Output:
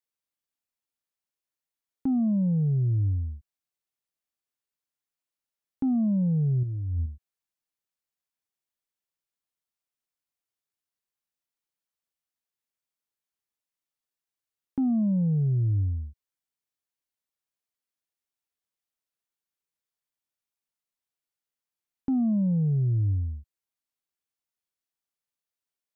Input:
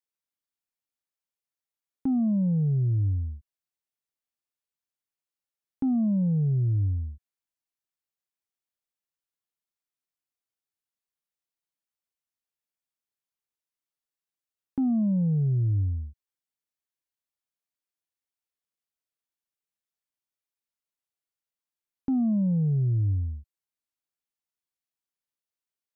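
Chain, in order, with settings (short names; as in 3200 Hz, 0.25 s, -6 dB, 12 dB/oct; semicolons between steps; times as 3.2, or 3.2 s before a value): 6.63–7.06 negative-ratio compressor -29 dBFS, ratio -1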